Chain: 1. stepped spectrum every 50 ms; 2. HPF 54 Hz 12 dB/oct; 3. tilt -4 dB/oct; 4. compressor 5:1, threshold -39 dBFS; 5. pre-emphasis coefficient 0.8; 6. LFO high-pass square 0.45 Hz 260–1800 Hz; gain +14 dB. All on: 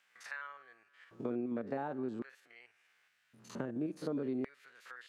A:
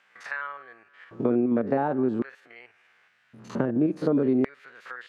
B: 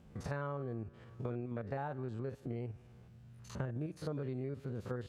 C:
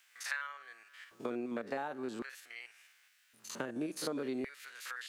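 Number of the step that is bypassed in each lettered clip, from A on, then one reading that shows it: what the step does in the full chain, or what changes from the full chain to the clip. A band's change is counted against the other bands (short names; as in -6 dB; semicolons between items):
5, 2 kHz band -3.0 dB; 6, 125 Hz band +12.0 dB; 3, 8 kHz band +12.5 dB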